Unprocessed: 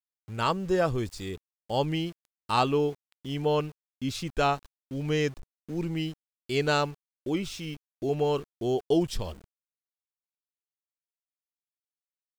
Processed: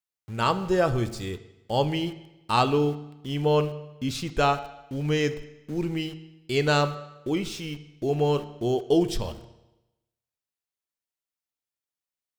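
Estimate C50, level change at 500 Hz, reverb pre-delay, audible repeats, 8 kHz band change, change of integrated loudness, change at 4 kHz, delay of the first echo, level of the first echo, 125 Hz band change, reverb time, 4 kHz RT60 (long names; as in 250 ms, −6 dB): 14.0 dB, +2.5 dB, 9 ms, no echo audible, +2.5 dB, +3.0 dB, +3.0 dB, no echo audible, no echo audible, +4.0 dB, 0.95 s, 0.90 s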